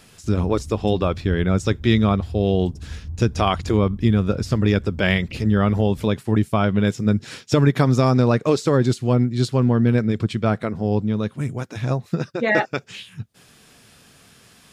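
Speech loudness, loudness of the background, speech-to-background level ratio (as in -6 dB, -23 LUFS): -20.5 LUFS, -36.5 LUFS, 16.0 dB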